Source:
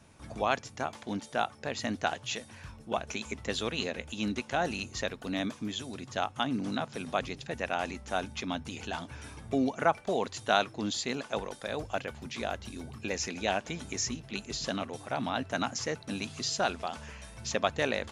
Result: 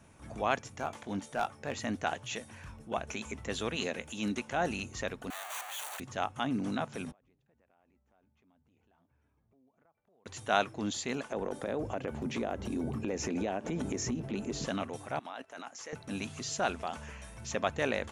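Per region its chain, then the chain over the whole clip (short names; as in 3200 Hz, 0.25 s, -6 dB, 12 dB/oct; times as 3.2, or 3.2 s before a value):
0.69–1.78 overloaded stage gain 22 dB + doubler 21 ms -11 dB
3.76–4.4 HPF 110 Hz + high shelf 3900 Hz +5.5 dB
5.3–6 infinite clipping + steep high-pass 660 Hz + notch 5200 Hz, Q 5.2
7.11–10.26 LPF 1100 Hz 6 dB/oct + compressor, threshold -37 dBFS + flipped gate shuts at -44 dBFS, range -27 dB
11.32–14.66 bell 320 Hz +14.5 dB 3 oct + compressor 12:1, threshold -28 dBFS
15.19–15.93 HPF 440 Hz + level quantiser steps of 14 dB
whole clip: transient shaper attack -4 dB, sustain 0 dB; bell 4200 Hz -6 dB 0.77 oct; notch 5000 Hz, Q 18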